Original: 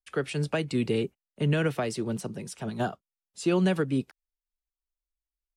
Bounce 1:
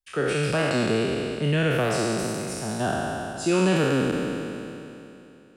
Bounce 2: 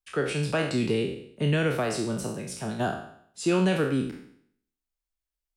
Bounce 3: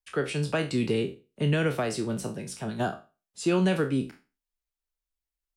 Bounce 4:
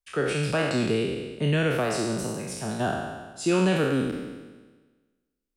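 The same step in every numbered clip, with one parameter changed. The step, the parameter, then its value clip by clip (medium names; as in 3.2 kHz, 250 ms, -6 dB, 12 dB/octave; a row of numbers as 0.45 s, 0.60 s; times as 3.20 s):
spectral sustain, RT60: 2.92 s, 0.64 s, 0.31 s, 1.35 s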